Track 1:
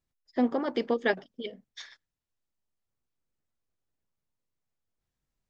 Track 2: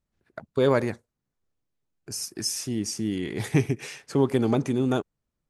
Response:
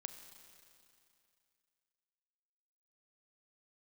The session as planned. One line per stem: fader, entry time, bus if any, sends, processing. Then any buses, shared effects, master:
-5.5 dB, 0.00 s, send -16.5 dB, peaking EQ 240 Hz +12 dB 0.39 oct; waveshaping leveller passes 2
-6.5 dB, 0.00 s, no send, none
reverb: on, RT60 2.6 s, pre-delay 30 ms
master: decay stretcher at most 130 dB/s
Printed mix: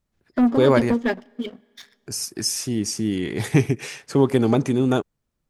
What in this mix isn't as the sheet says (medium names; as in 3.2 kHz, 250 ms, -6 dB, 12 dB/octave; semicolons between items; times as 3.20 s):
stem 2 -6.5 dB -> +4.5 dB; master: missing decay stretcher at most 130 dB/s